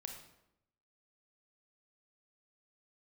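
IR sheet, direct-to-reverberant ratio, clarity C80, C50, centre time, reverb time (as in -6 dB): 3.0 dB, 8.0 dB, 5.0 dB, 28 ms, 0.85 s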